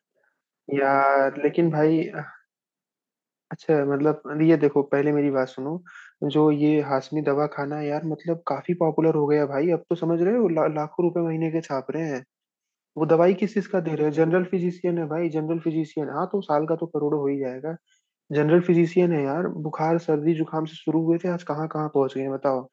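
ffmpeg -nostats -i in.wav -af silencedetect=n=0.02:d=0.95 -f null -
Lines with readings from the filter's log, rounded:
silence_start: 2.29
silence_end: 3.51 | silence_duration: 1.22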